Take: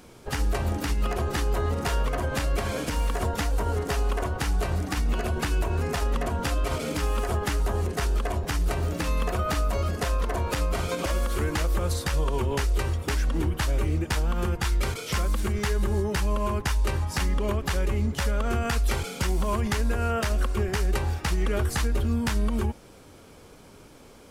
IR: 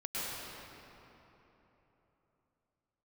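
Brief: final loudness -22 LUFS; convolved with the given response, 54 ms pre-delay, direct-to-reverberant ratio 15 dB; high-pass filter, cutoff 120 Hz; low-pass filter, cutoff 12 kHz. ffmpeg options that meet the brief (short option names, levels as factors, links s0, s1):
-filter_complex "[0:a]highpass=120,lowpass=12000,asplit=2[s0][s1];[1:a]atrim=start_sample=2205,adelay=54[s2];[s1][s2]afir=irnorm=-1:irlink=0,volume=0.1[s3];[s0][s3]amix=inputs=2:normalize=0,volume=2.66"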